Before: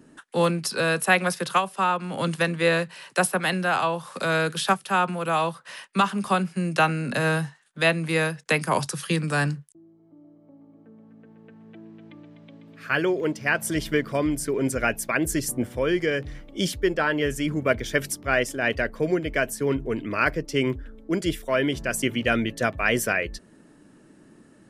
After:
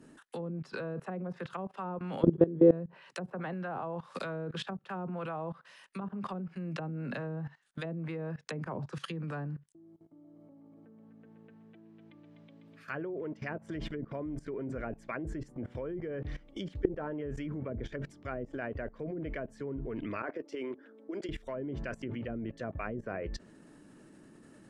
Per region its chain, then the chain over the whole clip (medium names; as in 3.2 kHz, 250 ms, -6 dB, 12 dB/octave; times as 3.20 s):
2.22–2.71 s: de-hum 183.6 Hz, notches 35 + small resonant body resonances 380/3300 Hz, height 17 dB, ringing for 25 ms
20.22–21.29 s: high-pass 280 Hz 24 dB/octave + treble shelf 2 kHz -10.5 dB + compressor with a negative ratio -28 dBFS, ratio -0.5
whole clip: dynamic bell 7.2 kHz, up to +5 dB, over -50 dBFS, Q 3.4; low-pass that closes with the level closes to 380 Hz, closed at -17.5 dBFS; level held to a coarse grid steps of 19 dB; trim +1 dB